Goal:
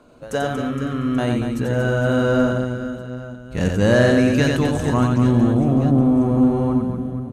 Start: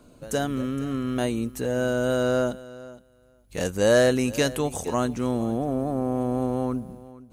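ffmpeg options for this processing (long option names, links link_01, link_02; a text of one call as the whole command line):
ffmpeg -i in.wav -filter_complex "[0:a]aecho=1:1:90|234|464.4|833|1423:0.631|0.398|0.251|0.158|0.1,asubboost=boost=10.5:cutoff=180,asplit=2[link_01][link_02];[link_02]highpass=frequency=720:poles=1,volume=14dB,asoftclip=type=tanh:threshold=-0.5dB[link_03];[link_01][link_03]amix=inputs=2:normalize=0,lowpass=frequency=1400:poles=1,volume=-6dB" out.wav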